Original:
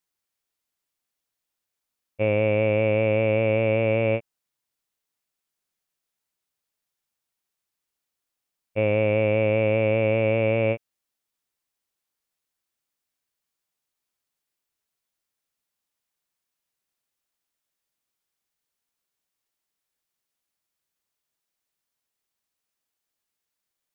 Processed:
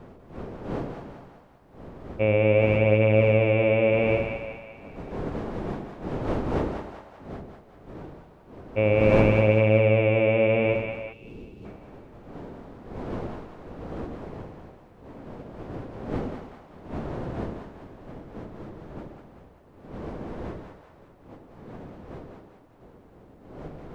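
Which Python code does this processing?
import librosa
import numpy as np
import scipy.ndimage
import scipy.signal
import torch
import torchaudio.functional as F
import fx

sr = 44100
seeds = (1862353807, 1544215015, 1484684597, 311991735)

y = fx.dmg_wind(x, sr, seeds[0], corner_hz=450.0, level_db=-37.0)
y = fx.echo_split(y, sr, split_hz=620.0, low_ms=92, high_ms=194, feedback_pct=52, wet_db=-6)
y = fx.spec_box(y, sr, start_s=11.13, length_s=0.52, low_hz=510.0, high_hz=2500.0, gain_db=-12)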